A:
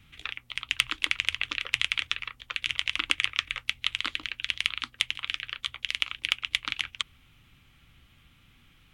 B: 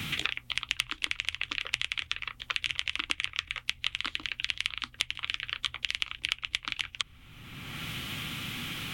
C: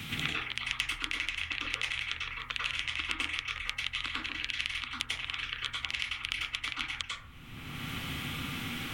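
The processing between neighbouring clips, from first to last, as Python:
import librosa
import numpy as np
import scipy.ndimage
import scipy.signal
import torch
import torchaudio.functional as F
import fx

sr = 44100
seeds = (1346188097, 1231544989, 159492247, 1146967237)

y1 = fx.low_shelf(x, sr, hz=190.0, db=4.5)
y1 = fx.band_squash(y1, sr, depth_pct=100)
y1 = y1 * librosa.db_to_amplitude(-3.5)
y2 = fx.rev_plate(y1, sr, seeds[0], rt60_s=0.58, hf_ratio=0.35, predelay_ms=85, drr_db=-4.5)
y2 = y2 * librosa.db_to_amplitude(-5.0)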